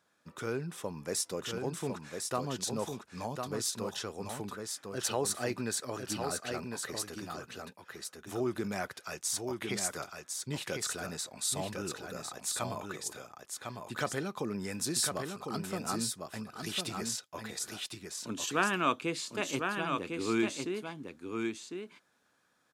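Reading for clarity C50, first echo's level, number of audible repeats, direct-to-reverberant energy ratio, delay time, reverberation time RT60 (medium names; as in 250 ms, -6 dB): no reverb, -5.0 dB, 1, no reverb, 1053 ms, no reverb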